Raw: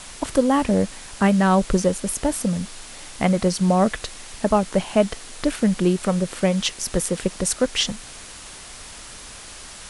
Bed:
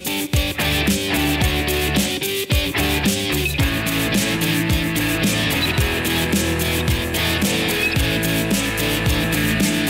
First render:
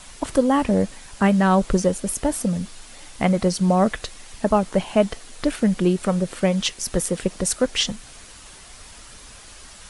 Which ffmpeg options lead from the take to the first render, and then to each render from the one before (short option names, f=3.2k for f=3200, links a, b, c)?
-af "afftdn=nr=6:nf=-40"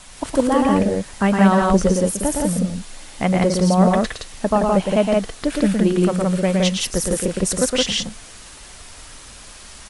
-af "aecho=1:1:113.7|169.1:0.631|0.794"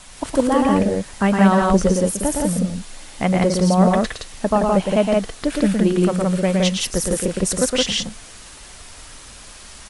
-af anull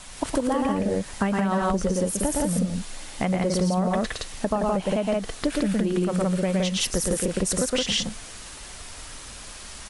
-af "alimiter=limit=-9.5dB:level=0:latency=1:release=121,acompressor=threshold=-20dB:ratio=6"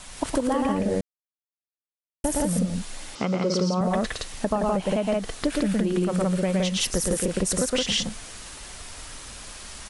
-filter_complex "[0:a]asettb=1/sr,asplit=3[a][b][c];[a]atrim=end=3.154[d];[b]atrim=start=3.15:end=3.81,asetpts=PTS-STARTPTS,afade=t=in:d=0.004:c=qsin,afade=t=out:st=0.656:d=0.004:c=qsin,highpass=150,equalizer=f=430:t=q:w=4:g=5,equalizer=f=720:t=q:w=4:g=-6,equalizer=f=1.3k:t=q:w=4:g=10,equalizer=f=1.8k:t=q:w=4:g=-9,equalizer=f=5.2k:t=q:w=4:g=6,lowpass=f=6.7k:w=0.5412,lowpass=f=6.7k:w=1.3066[e];[c]atrim=start=3.806[f];[d][e]acrossfade=d=0.004:c1=hsin:c2=qsin[g];[g][f]acrossfade=d=0.004:c1=qsin:c2=hsin,asplit=3[h][i][j];[h]atrim=end=1.01,asetpts=PTS-STARTPTS,afade=t=out:st=1.006:d=0.004:c=hsin[k];[i]atrim=start=1.01:end=2.24,asetpts=PTS-STARTPTS,volume=0[l];[j]atrim=start=2.24,asetpts=PTS-STARTPTS,afade=t=in:d=0.004:c=hsin[m];[k][l][m]concat=n=3:v=0:a=1"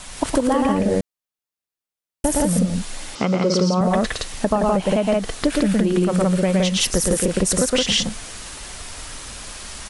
-af "volume=5.5dB"